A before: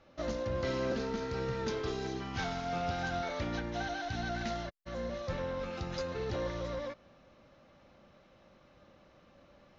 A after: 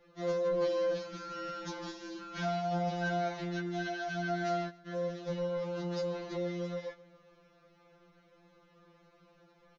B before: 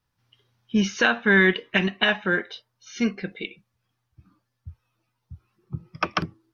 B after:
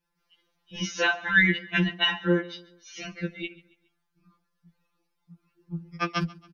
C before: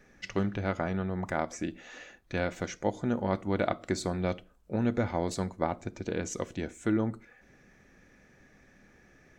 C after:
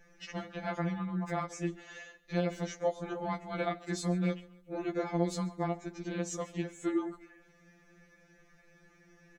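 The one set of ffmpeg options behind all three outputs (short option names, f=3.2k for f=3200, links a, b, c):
-filter_complex "[0:a]asplit=2[a][b];[b]aecho=0:1:138|276|414:0.0794|0.0357|0.0161[c];[a][c]amix=inputs=2:normalize=0,afftfilt=real='re*2.83*eq(mod(b,8),0)':imag='im*2.83*eq(mod(b,8),0)':win_size=2048:overlap=0.75"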